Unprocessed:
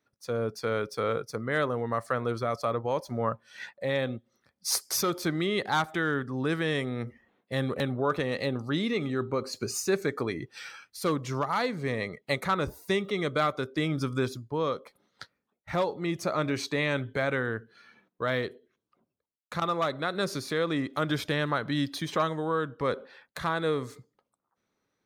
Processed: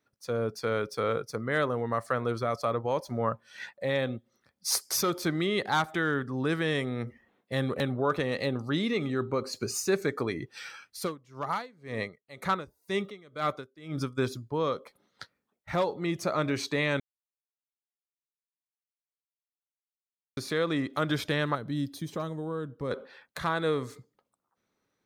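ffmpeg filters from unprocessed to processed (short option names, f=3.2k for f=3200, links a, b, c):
-filter_complex "[0:a]asplit=3[a][b][c];[a]afade=t=out:st=11.04:d=0.02[d];[b]aeval=exprs='val(0)*pow(10,-25*(0.5-0.5*cos(2*PI*2*n/s))/20)':c=same,afade=t=in:st=11.04:d=0.02,afade=t=out:st=14.17:d=0.02[e];[c]afade=t=in:st=14.17:d=0.02[f];[d][e][f]amix=inputs=3:normalize=0,asettb=1/sr,asplit=3[g][h][i];[g]atrim=end=21.554[j];[h]atrim=start=21.55:end=22.91,asetpts=PTS-STARTPTS,afade=t=in:d=0.004:c=qsin,afade=t=out:st=1.356:d=0.004:c=qsin,equalizer=f=1.9k:w=0.34:g=-13.5[k];[i]atrim=start=22.906[l];[j][k]acrossfade=d=0.004:c1=hsin:c2=qsin[m];[m][l]acrossfade=d=0.004:c1=qsin:c2=hsin,asplit=3[n][o][p];[n]atrim=end=17,asetpts=PTS-STARTPTS,afade=t=out:st=16.996:d=0.004:c=hsin[q];[o]atrim=start=17:end=20.37,asetpts=PTS-STARTPTS,volume=0[r];[p]atrim=start=20.37,asetpts=PTS-STARTPTS,afade=t=in:d=0.004:c=hsin[s];[q][r][s]concat=n=3:v=0:a=1"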